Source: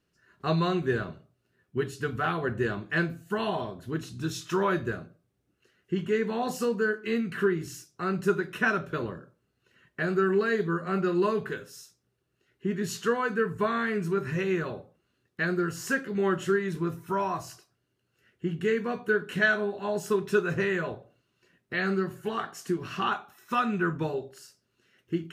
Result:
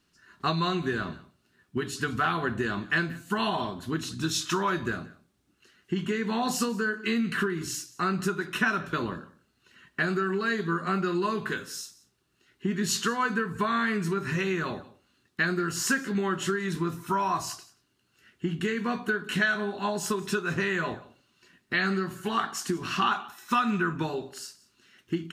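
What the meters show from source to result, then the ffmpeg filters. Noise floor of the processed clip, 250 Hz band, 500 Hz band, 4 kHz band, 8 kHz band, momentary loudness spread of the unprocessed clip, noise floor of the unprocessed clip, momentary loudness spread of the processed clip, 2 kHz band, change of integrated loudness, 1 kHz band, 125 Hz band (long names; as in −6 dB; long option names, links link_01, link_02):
−71 dBFS, +0.5 dB, −4.0 dB, +6.5 dB, +9.0 dB, 10 LU, −76 dBFS, 8 LU, +1.5 dB, 0.0 dB, +2.5 dB, 0.0 dB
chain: -filter_complex "[0:a]acompressor=threshold=-28dB:ratio=6,equalizer=frequency=125:width_type=o:width=1:gain=-5,equalizer=frequency=250:width_type=o:width=1:gain=4,equalizer=frequency=500:width_type=o:width=1:gain=-8,equalizer=frequency=1000:width_type=o:width=1:gain=4,equalizer=frequency=4000:width_type=o:width=1:gain=5,equalizer=frequency=8000:width_type=o:width=1:gain=4,asplit=2[link_01][link_02];[link_02]aecho=0:1:179:0.0891[link_03];[link_01][link_03]amix=inputs=2:normalize=0,volume=5dB"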